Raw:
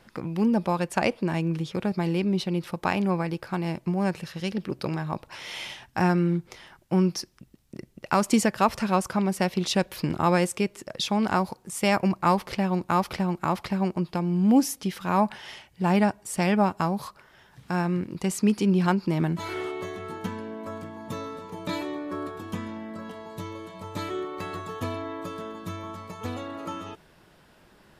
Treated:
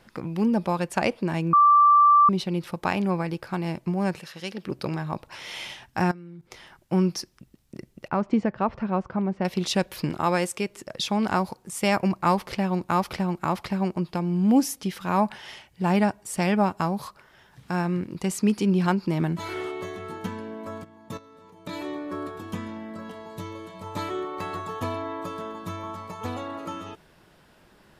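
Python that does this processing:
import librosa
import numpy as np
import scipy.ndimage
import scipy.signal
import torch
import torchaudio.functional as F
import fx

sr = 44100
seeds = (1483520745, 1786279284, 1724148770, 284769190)

y = fx.highpass(x, sr, hz=430.0, slope=6, at=(4.19, 4.65))
y = fx.level_steps(y, sr, step_db=21, at=(6.03, 6.5), fade=0.02)
y = fx.spacing_loss(y, sr, db_at_10k=44, at=(8.08, 9.45))
y = fx.low_shelf(y, sr, hz=260.0, db=-6.5, at=(10.1, 10.7))
y = fx.level_steps(y, sr, step_db=17, at=(20.83, 21.83), fade=0.02)
y = fx.peak_eq(y, sr, hz=910.0, db=5.5, octaves=0.91, at=(23.86, 26.59))
y = fx.edit(y, sr, fx.bleep(start_s=1.53, length_s=0.76, hz=1170.0, db=-12.5), tone=tone)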